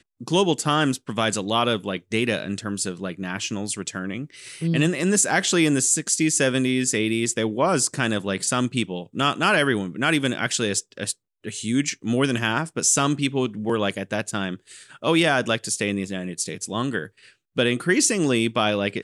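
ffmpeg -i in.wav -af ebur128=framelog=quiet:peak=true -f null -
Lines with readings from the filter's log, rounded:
Integrated loudness:
  I:         -22.7 LUFS
  Threshold: -32.9 LUFS
Loudness range:
  LRA:         4.5 LU
  Threshold: -43.0 LUFS
  LRA low:   -25.1 LUFS
  LRA high:  -20.6 LUFS
True peak:
  Peak:       -6.1 dBFS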